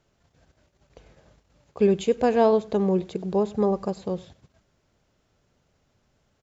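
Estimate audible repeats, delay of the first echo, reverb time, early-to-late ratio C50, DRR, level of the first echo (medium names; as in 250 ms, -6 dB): 1, 96 ms, no reverb, no reverb, no reverb, -21.5 dB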